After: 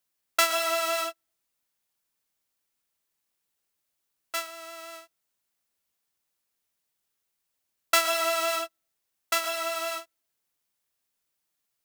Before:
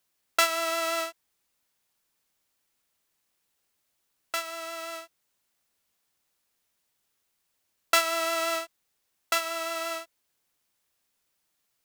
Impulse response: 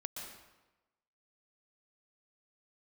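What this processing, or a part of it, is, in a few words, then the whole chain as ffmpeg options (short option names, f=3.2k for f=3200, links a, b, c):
keyed gated reverb: -filter_complex "[0:a]highshelf=f=8.8k:g=3.5,asplit=3[a][b][c];[1:a]atrim=start_sample=2205[d];[b][d]afir=irnorm=-1:irlink=0[e];[c]apad=whole_len=522470[f];[e][f]sidechaingate=range=-51dB:threshold=-32dB:ratio=16:detection=peak,volume=3.5dB[g];[a][g]amix=inputs=2:normalize=0,volume=-6dB"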